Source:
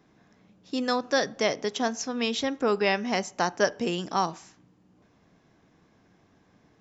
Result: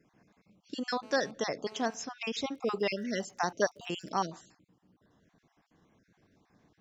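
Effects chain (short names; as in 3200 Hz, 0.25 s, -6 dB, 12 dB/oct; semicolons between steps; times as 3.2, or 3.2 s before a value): random spectral dropouts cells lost 35%; 1.03–1.94 GSM buzz -48 dBFS; 2.53–4.09 crackle 72/s -46 dBFS; gain -4.5 dB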